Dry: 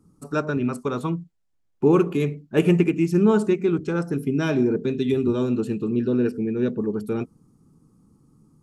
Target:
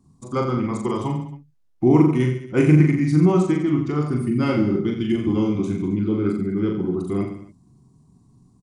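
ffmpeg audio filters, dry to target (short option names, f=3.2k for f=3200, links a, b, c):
-af "asetrate=38170,aresample=44100,atempo=1.15535,aecho=1:1:40|86|138.9|199.7|269.7:0.631|0.398|0.251|0.158|0.1"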